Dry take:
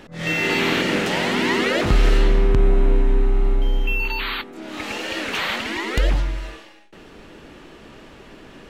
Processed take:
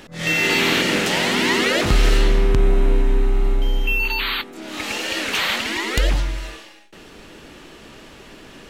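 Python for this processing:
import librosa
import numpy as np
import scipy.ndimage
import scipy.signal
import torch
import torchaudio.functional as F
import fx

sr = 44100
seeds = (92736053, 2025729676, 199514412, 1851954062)

y = fx.high_shelf(x, sr, hz=3200.0, db=9.0)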